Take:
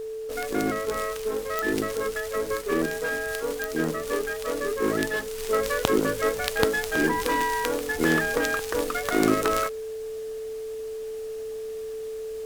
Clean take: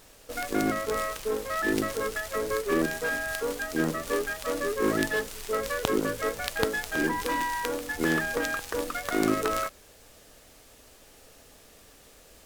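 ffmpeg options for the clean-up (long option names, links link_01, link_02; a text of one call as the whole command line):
ffmpeg -i in.wav -af "adeclick=threshold=4,bandreject=frequency=440:width=30,asetnsamples=nb_out_samples=441:pad=0,asendcmd='5.38 volume volume -3.5dB',volume=0dB" out.wav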